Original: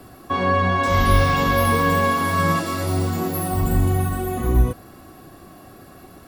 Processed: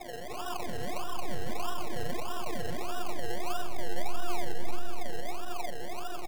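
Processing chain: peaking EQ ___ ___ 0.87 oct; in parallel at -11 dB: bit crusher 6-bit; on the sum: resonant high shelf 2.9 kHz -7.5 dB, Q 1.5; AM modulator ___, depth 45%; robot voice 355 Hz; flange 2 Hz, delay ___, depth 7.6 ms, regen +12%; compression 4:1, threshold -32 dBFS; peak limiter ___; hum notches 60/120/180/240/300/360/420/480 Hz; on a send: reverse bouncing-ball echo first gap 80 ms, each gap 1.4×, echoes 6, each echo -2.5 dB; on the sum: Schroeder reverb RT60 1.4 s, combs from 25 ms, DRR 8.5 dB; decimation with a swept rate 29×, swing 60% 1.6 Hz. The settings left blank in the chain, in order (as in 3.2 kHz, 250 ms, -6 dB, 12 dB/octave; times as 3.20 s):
610 Hz, +14.5 dB, 290 Hz, 3.8 ms, -30 dBFS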